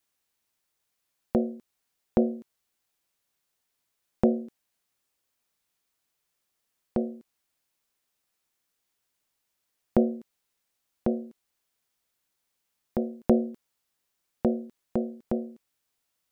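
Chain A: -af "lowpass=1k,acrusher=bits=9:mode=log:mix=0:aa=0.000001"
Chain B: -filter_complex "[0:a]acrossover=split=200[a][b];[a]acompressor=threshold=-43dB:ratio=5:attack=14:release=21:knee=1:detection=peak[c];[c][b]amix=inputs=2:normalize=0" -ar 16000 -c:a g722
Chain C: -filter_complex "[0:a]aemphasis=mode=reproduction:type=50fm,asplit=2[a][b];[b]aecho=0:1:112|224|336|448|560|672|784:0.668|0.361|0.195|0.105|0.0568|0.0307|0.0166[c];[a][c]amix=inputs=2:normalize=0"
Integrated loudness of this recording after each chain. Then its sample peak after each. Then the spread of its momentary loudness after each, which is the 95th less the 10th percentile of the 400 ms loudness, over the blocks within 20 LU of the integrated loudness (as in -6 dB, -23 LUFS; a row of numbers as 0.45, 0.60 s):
-30.0, -31.0, -28.0 LUFS; -6.0, -9.5, -5.5 dBFS; 16, 15, 18 LU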